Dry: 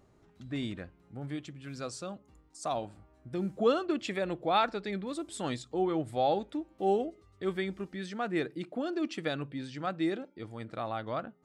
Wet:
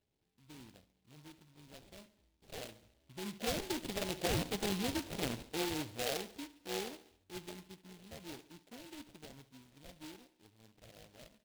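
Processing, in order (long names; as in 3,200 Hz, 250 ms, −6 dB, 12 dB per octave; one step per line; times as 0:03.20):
source passing by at 0:04.67, 17 m/s, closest 4.8 metres
dynamic equaliser 1,400 Hz, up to +5 dB, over −50 dBFS, Q 1.1
downward compressor 8 to 1, threshold −36 dBFS, peak gain reduction 13.5 dB
decimation without filtering 36×
repeating echo 70 ms, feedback 55%, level −16.5 dB
short delay modulated by noise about 2,900 Hz, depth 0.17 ms
level +4.5 dB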